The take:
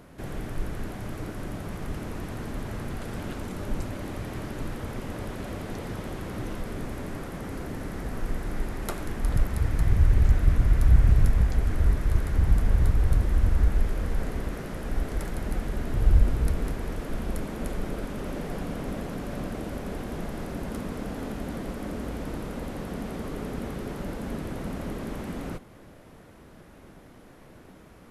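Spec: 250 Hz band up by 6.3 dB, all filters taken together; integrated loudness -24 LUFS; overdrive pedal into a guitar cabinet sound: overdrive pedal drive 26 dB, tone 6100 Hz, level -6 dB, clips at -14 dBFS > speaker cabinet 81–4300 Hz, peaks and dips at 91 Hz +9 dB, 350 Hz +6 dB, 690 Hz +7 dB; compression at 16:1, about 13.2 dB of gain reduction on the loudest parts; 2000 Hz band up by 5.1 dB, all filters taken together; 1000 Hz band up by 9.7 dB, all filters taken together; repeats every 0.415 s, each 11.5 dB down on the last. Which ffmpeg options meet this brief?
-filter_complex "[0:a]equalizer=f=250:t=o:g=5.5,equalizer=f=1k:t=o:g=8.5,equalizer=f=2k:t=o:g=3,acompressor=threshold=-26dB:ratio=16,aecho=1:1:415|830|1245:0.266|0.0718|0.0194,asplit=2[a][b];[b]highpass=f=720:p=1,volume=26dB,asoftclip=type=tanh:threshold=-14dB[c];[a][c]amix=inputs=2:normalize=0,lowpass=f=6.1k:p=1,volume=-6dB,highpass=81,equalizer=f=91:t=q:w=4:g=9,equalizer=f=350:t=q:w=4:g=6,equalizer=f=690:t=q:w=4:g=7,lowpass=f=4.3k:w=0.5412,lowpass=f=4.3k:w=1.3066,volume=-2dB"

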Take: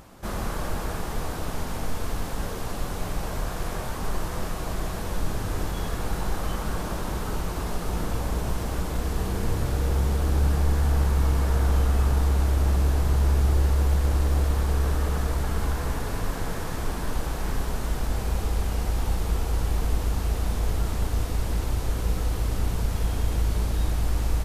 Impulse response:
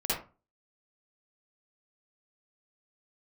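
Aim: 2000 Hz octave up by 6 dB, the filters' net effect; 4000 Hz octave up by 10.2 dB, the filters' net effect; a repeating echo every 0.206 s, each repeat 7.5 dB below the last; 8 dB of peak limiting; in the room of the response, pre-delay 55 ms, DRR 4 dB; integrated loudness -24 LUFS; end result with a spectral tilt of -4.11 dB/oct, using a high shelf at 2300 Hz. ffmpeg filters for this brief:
-filter_complex "[0:a]equalizer=f=2k:t=o:g=3,highshelf=f=2.3k:g=7,equalizer=f=4k:t=o:g=5.5,alimiter=limit=-18.5dB:level=0:latency=1,aecho=1:1:206|412|618|824|1030:0.422|0.177|0.0744|0.0312|0.0131,asplit=2[a][b];[1:a]atrim=start_sample=2205,adelay=55[c];[b][c]afir=irnorm=-1:irlink=0,volume=-12dB[d];[a][d]amix=inputs=2:normalize=0,volume=3dB"

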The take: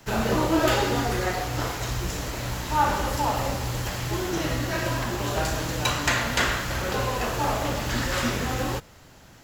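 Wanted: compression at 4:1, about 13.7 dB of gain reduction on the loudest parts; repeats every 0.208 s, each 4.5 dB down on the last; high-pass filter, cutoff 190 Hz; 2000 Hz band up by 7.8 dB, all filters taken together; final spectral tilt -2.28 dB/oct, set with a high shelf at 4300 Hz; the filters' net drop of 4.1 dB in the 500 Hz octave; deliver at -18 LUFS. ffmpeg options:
-af "highpass=190,equalizer=f=500:t=o:g=-6,equalizer=f=2k:t=o:g=8.5,highshelf=f=4.3k:g=8.5,acompressor=threshold=-31dB:ratio=4,aecho=1:1:208|416|624|832|1040|1248|1456|1664|1872:0.596|0.357|0.214|0.129|0.0772|0.0463|0.0278|0.0167|0.01,volume=11.5dB"

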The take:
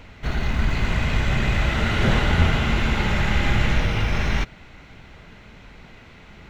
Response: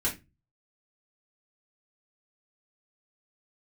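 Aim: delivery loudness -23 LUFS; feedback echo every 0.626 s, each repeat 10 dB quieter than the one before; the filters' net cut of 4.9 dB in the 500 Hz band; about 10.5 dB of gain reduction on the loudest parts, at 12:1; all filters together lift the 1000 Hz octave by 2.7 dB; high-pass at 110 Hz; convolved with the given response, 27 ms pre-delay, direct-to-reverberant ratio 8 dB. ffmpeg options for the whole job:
-filter_complex "[0:a]highpass=110,equalizer=f=500:t=o:g=-8.5,equalizer=f=1k:t=o:g=6,acompressor=threshold=-27dB:ratio=12,aecho=1:1:626|1252|1878|2504:0.316|0.101|0.0324|0.0104,asplit=2[a][b];[1:a]atrim=start_sample=2205,adelay=27[c];[b][c]afir=irnorm=-1:irlink=0,volume=-15dB[d];[a][d]amix=inputs=2:normalize=0,volume=7dB"

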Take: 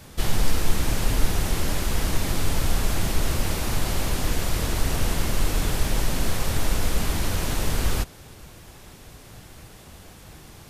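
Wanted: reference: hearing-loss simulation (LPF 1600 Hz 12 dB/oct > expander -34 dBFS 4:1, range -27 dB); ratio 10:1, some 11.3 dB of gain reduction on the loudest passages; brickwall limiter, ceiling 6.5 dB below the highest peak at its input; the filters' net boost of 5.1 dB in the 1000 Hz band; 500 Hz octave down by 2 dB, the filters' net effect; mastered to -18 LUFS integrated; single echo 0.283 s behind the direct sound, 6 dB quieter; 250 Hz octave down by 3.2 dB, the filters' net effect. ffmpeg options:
-af "equalizer=f=250:t=o:g=-4,equalizer=f=500:t=o:g=-4,equalizer=f=1k:t=o:g=8.5,acompressor=threshold=-22dB:ratio=10,alimiter=limit=-21.5dB:level=0:latency=1,lowpass=1.6k,aecho=1:1:283:0.501,agate=range=-27dB:threshold=-34dB:ratio=4,volume=17.5dB"

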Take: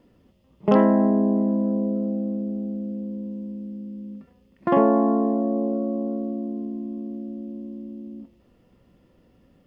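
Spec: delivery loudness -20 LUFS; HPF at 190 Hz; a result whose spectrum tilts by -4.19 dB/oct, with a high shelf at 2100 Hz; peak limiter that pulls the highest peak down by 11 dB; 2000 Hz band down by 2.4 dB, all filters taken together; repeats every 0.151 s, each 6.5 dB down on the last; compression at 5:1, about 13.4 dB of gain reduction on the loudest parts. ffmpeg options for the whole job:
-af "highpass=190,equalizer=f=2k:t=o:g=-5.5,highshelf=f=2.1k:g=5,acompressor=threshold=-29dB:ratio=5,alimiter=level_in=2.5dB:limit=-24dB:level=0:latency=1,volume=-2.5dB,aecho=1:1:151|302|453|604|755|906:0.473|0.222|0.105|0.0491|0.0231|0.0109,volume=14dB"

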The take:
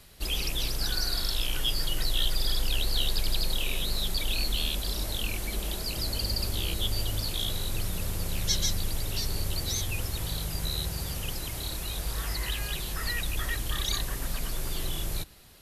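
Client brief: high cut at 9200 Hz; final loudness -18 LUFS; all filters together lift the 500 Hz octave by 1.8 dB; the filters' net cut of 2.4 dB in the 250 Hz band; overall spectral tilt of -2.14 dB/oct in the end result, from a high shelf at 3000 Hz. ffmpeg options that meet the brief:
-af "lowpass=9.2k,equalizer=f=250:t=o:g=-5,equalizer=f=500:t=o:g=3.5,highshelf=f=3k:g=8,volume=9dB"

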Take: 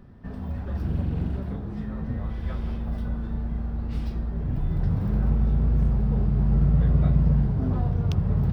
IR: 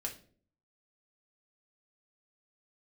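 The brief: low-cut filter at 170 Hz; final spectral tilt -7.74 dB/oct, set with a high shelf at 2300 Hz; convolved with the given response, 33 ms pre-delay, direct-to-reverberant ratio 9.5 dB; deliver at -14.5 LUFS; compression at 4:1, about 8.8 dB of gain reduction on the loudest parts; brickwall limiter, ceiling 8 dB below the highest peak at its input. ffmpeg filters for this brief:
-filter_complex "[0:a]highpass=170,highshelf=f=2.3k:g=-8.5,acompressor=threshold=-33dB:ratio=4,alimiter=level_in=7.5dB:limit=-24dB:level=0:latency=1,volume=-7.5dB,asplit=2[a][b];[1:a]atrim=start_sample=2205,adelay=33[c];[b][c]afir=irnorm=-1:irlink=0,volume=-9.5dB[d];[a][d]amix=inputs=2:normalize=0,volume=25dB"

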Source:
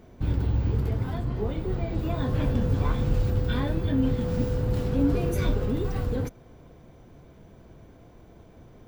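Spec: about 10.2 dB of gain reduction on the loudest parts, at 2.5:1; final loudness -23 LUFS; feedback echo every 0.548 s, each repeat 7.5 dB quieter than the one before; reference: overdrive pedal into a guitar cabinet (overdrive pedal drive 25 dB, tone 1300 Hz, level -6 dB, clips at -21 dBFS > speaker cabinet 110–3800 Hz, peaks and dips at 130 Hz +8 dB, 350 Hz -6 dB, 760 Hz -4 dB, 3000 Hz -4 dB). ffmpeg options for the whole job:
-filter_complex "[0:a]acompressor=threshold=-35dB:ratio=2.5,aecho=1:1:548|1096|1644|2192|2740:0.422|0.177|0.0744|0.0312|0.0131,asplit=2[a][b];[b]highpass=f=720:p=1,volume=25dB,asoftclip=type=tanh:threshold=-21dB[c];[a][c]amix=inputs=2:normalize=0,lowpass=f=1.3k:p=1,volume=-6dB,highpass=110,equalizer=f=130:t=q:w=4:g=8,equalizer=f=350:t=q:w=4:g=-6,equalizer=f=760:t=q:w=4:g=-4,equalizer=f=3k:t=q:w=4:g=-4,lowpass=f=3.8k:w=0.5412,lowpass=f=3.8k:w=1.3066,volume=10dB"

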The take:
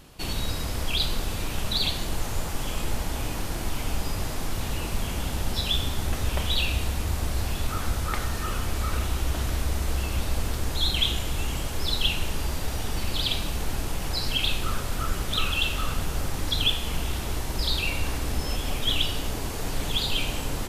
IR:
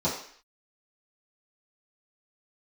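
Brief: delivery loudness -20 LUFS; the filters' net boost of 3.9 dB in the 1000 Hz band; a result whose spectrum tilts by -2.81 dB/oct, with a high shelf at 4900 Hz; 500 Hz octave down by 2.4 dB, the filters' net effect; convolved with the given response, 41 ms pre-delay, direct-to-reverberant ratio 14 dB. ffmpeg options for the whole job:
-filter_complex "[0:a]equalizer=f=500:t=o:g=-5,equalizer=f=1k:t=o:g=6,highshelf=f=4.9k:g=7.5,asplit=2[a][b];[1:a]atrim=start_sample=2205,adelay=41[c];[b][c]afir=irnorm=-1:irlink=0,volume=-25dB[d];[a][d]amix=inputs=2:normalize=0,volume=6dB"

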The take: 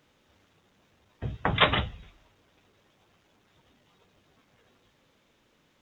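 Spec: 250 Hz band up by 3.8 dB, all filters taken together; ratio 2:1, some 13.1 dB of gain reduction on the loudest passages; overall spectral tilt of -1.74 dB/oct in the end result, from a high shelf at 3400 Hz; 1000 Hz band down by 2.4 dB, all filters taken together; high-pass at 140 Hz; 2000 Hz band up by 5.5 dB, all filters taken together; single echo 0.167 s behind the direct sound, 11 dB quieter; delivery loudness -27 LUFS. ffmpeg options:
-af "highpass=140,equalizer=f=250:t=o:g=6.5,equalizer=f=1k:t=o:g=-6,equalizer=f=2k:t=o:g=5.5,highshelf=f=3.4k:g=8,acompressor=threshold=-37dB:ratio=2,aecho=1:1:167:0.282,volume=7.5dB"

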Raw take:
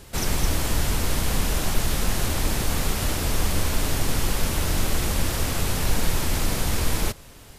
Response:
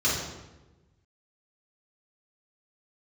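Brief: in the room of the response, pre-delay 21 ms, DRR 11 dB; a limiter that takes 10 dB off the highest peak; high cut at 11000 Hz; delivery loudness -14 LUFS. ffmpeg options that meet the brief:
-filter_complex "[0:a]lowpass=11k,alimiter=limit=-18dB:level=0:latency=1,asplit=2[a][b];[1:a]atrim=start_sample=2205,adelay=21[c];[b][c]afir=irnorm=-1:irlink=0,volume=-24dB[d];[a][d]amix=inputs=2:normalize=0,volume=14.5dB"

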